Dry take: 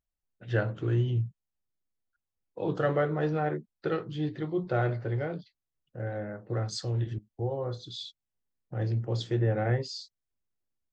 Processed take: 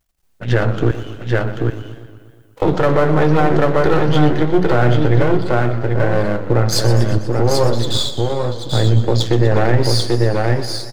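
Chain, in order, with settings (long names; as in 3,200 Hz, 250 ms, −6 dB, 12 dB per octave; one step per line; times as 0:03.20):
gain on one half-wave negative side −12 dB
in parallel at +2 dB: downward compressor, threshold −37 dBFS, peak gain reduction 14 dB
0:00.91–0:02.62: on the sum: first difference
on a send: single-tap delay 788 ms −5 dB
on the sum: boost into a limiter +19 dB
feedback echo with a swinging delay time 120 ms, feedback 65%, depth 144 cents, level −13 dB
level −2.5 dB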